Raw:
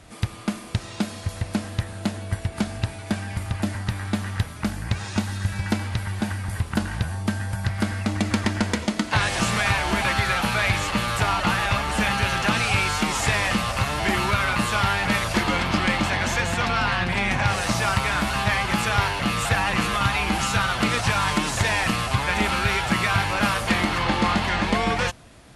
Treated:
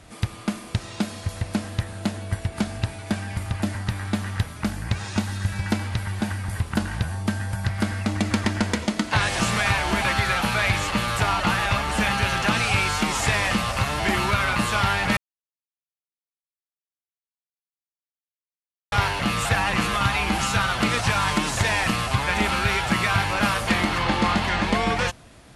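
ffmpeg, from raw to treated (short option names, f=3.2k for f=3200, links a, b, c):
-filter_complex "[0:a]asplit=3[a][b][c];[a]atrim=end=15.17,asetpts=PTS-STARTPTS,afade=t=out:st=15.166:d=0.004:c=hsin[d];[b]atrim=start=15.17:end=18.92,asetpts=PTS-STARTPTS,volume=0[e];[c]atrim=start=18.92,asetpts=PTS-STARTPTS,afade=t=in:d=0.004:c=hsin[f];[d][e][f]concat=n=3:v=0:a=1"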